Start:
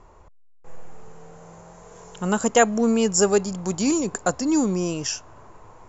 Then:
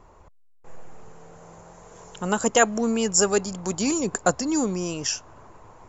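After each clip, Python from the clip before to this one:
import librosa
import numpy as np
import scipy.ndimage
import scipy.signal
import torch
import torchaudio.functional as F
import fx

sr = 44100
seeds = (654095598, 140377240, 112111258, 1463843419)

y = fx.hpss(x, sr, part='percussive', gain_db=6)
y = F.gain(torch.from_numpy(y), -4.0).numpy()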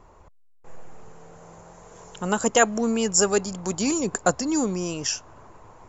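y = x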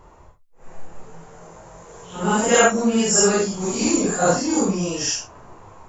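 y = fx.phase_scramble(x, sr, seeds[0], window_ms=200)
y = F.gain(torch.from_numpy(y), 4.5).numpy()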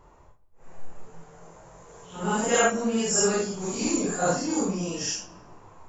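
y = fx.room_shoebox(x, sr, seeds[1], volume_m3=990.0, walls='mixed', distance_m=0.32)
y = F.gain(torch.from_numpy(y), -6.5).numpy()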